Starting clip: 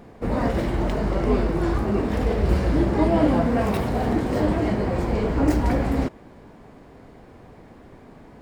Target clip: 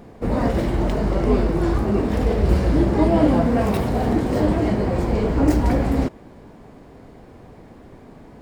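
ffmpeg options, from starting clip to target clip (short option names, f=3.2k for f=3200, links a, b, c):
-af "equalizer=f=1.7k:t=o:w=2.2:g=-3,volume=3dB"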